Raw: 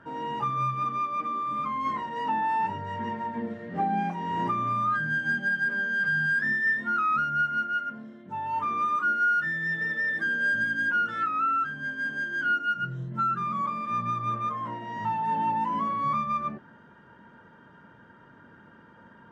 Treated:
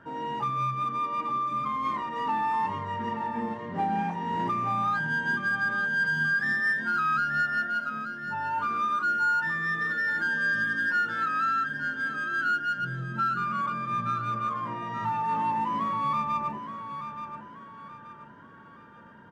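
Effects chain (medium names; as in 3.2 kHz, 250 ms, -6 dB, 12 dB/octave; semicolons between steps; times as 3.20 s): 7.30–7.88 s: peaking EQ 660 Hz +11 dB 0.24 oct; in parallel at -8 dB: overload inside the chain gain 28 dB; on the sum: feedback delay 877 ms, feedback 37%, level -9.5 dB; trim -3 dB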